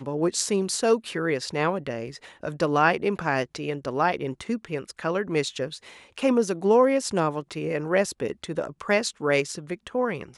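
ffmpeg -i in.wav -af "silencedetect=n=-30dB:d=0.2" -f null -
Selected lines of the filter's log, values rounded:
silence_start: 2.15
silence_end: 2.43 | silence_duration: 0.28
silence_start: 5.75
silence_end: 6.18 | silence_duration: 0.42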